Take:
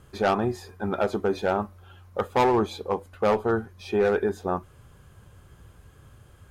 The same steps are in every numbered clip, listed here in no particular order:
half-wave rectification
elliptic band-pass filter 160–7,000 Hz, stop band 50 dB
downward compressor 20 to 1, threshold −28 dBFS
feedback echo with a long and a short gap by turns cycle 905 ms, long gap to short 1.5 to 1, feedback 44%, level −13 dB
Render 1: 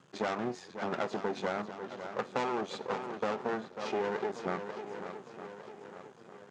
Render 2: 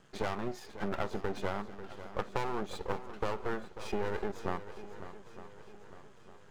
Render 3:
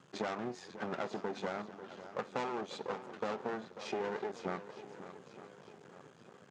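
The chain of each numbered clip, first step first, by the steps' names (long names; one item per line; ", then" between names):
feedback echo with a long and a short gap by turns, then half-wave rectification, then elliptic band-pass filter, then downward compressor
elliptic band-pass filter, then half-wave rectification, then downward compressor, then feedback echo with a long and a short gap by turns
downward compressor, then feedback echo with a long and a short gap by turns, then half-wave rectification, then elliptic band-pass filter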